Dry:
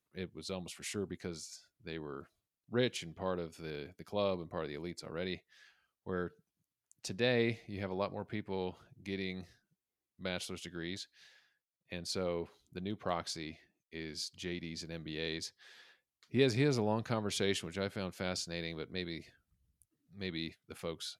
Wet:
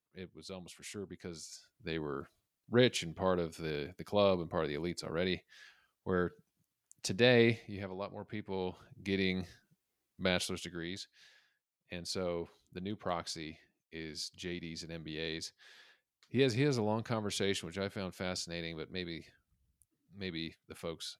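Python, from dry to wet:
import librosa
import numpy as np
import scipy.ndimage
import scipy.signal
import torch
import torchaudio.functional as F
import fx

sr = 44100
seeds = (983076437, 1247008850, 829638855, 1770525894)

y = fx.gain(x, sr, db=fx.line((1.11, -5.0), (1.88, 5.0), (7.5, 5.0), (7.98, -5.5), (9.28, 7.0), (10.31, 7.0), (10.89, -0.5)))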